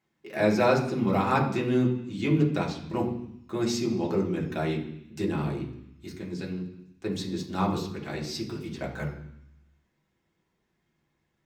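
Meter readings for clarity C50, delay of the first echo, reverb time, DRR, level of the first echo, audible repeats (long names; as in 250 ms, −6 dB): 8.0 dB, no echo audible, 0.75 s, −3.0 dB, no echo audible, no echo audible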